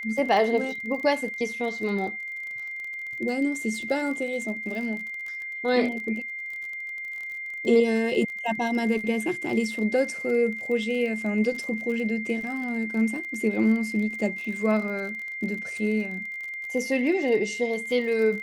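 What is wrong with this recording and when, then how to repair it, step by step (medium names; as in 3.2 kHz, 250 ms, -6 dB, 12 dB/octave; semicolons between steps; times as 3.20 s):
crackle 40 per s -33 dBFS
whine 2.1 kHz -32 dBFS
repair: de-click; band-stop 2.1 kHz, Q 30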